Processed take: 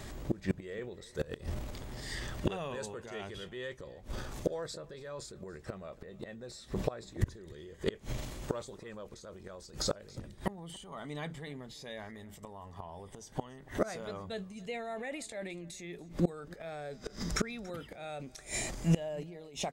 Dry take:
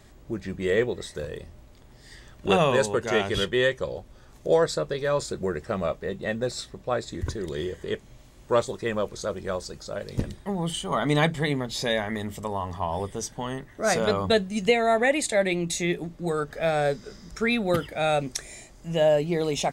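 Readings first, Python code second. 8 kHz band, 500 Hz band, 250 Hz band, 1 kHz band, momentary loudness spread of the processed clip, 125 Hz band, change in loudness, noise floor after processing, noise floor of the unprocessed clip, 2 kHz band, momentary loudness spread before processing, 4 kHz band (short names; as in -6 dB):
-9.0 dB, -15.0 dB, -10.0 dB, -16.0 dB, 12 LU, -7.5 dB, -13.0 dB, -54 dBFS, -51 dBFS, -15.5 dB, 12 LU, -12.5 dB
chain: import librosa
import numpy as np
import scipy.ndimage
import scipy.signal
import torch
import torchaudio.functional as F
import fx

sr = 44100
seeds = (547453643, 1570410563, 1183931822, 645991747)

p1 = fx.fade_out_tail(x, sr, length_s=0.68)
p2 = fx.transient(p1, sr, attack_db=-2, sustain_db=7)
p3 = fx.gate_flip(p2, sr, shuts_db=-24.0, range_db=-26)
p4 = p3 + fx.echo_single(p3, sr, ms=284, db=-22.0, dry=0)
y = p4 * librosa.db_to_amplitude(7.5)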